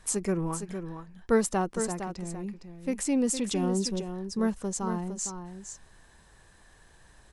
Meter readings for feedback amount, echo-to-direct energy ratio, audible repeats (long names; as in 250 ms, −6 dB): repeats not evenly spaced, −8.5 dB, 1